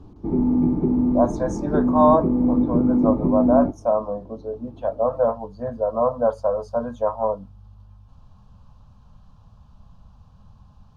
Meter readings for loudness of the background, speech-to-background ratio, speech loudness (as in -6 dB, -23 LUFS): -21.0 LUFS, -2.5 dB, -23.5 LUFS